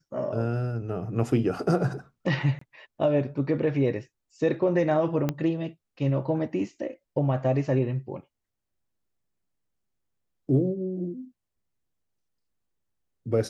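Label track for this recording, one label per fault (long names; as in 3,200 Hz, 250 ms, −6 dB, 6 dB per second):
2.590000	2.610000	drop-out 24 ms
5.290000	5.290000	click −13 dBFS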